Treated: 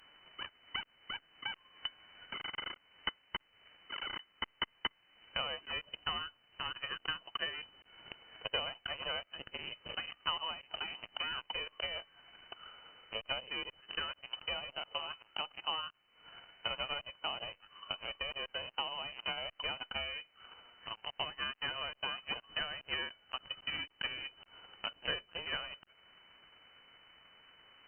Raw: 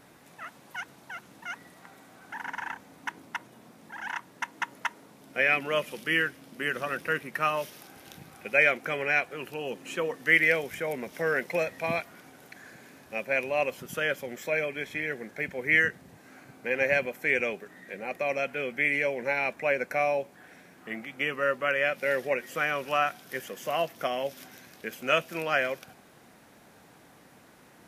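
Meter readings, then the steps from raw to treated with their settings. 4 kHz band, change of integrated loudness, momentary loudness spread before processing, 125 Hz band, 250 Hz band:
+4.5 dB, −11.0 dB, 17 LU, −13.5 dB, −17.5 dB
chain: stylus tracing distortion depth 0.18 ms
high-pass filter 810 Hz 12 dB per octave
in parallel at −7 dB: comparator with hysteresis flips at −34.5 dBFS
on the sum: downward compressor 2 to 1, threshold −46 dBFS, peak gain reduction 16 dB
transient designer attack +6 dB, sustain −3 dB
half-wave rectification
voice inversion scrambler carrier 3,000 Hz
level +1 dB
Opus 128 kbit/s 48,000 Hz

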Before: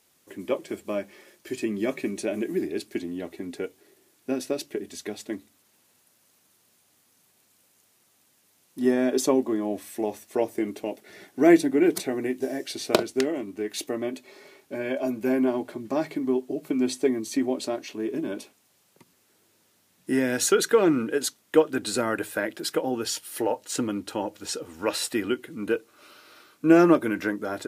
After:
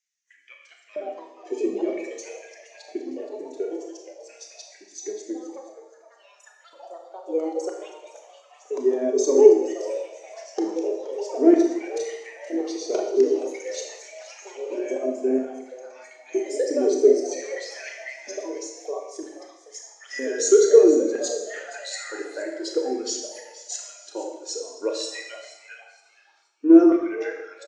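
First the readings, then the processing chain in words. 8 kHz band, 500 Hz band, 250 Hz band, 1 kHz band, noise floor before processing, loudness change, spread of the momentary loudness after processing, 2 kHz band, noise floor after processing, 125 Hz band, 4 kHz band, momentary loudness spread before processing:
+1.5 dB, +5.0 dB, +1.0 dB, −4.5 dB, −65 dBFS, +3.5 dB, 24 LU, −4.5 dB, −56 dBFS, below −20 dB, −2.5 dB, 14 LU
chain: reverb reduction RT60 1.8 s
delay with pitch and tempo change per echo 308 ms, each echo +4 semitones, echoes 3, each echo −6 dB
in parallel at 0 dB: downward compressor, threshold −34 dBFS, peak gain reduction 20.5 dB
on the sum: soft clipping −12 dBFS, distortion −16 dB
auto-filter high-pass square 0.52 Hz 380–1,900 Hz
low-pass with resonance 6,400 Hz, resonance Q 3.6
on a send: echo with shifted repeats 472 ms, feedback 40%, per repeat +120 Hz, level −11 dB
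on the sum: four-comb reverb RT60 1.4 s, combs from 27 ms, DRR 0 dB
every bin expanded away from the loudest bin 1.5 to 1
level −1 dB

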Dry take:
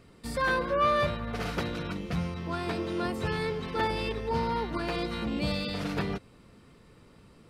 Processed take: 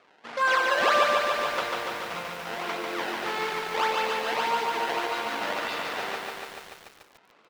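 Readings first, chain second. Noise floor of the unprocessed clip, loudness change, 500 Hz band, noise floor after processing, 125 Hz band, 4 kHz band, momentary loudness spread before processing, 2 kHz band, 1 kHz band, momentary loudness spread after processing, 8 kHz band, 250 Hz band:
−56 dBFS, +4.0 dB, +2.0 dB, −59 dBFS, −17.5 dB, +6.5 dB, 8 LU, +7.5 dB, +6.0 dB, 13 LU, +9.0 dB, −8.0 dB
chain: notch filter 1,800 Hz, Q 8.2
sample-and-hold swept by an LFO 22×, swing 160% 1.7 Hz
band-pass filter 740–3,500 Hz
repeating echo 277 ms, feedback 40%, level −17 dB
feedback echo at a low word length 145 ms, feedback 80%, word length 9 bits, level −3 dB
level +6 dB

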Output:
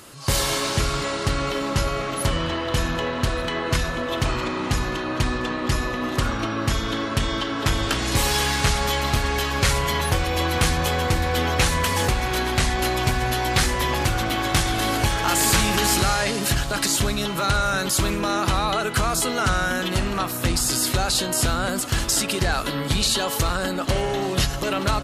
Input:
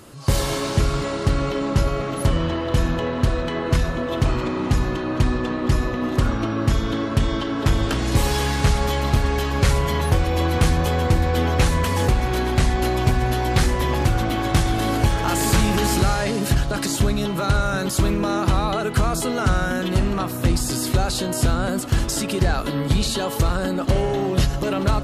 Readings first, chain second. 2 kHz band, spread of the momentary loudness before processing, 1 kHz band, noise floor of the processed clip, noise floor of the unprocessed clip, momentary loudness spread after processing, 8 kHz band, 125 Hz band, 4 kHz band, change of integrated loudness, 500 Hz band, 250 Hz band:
+3.5 dB, 3 LU, +1.0 dB, −28 dBFS, −26 dBFS, 5 LU, +5.0 dB, −5.0 dB, +4.5 dB, −1.0 dB, −2.0 dB, −4.0 dB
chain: tilt shelving filter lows −5 dB, about 790 Hz
single-tap delay 1,192 ms −22.5 dB

